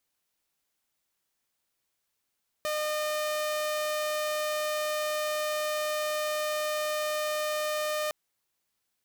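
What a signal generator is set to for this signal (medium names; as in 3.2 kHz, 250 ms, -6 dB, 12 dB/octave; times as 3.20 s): tone saw 608 Hz -25.5 dBFS 5.46 s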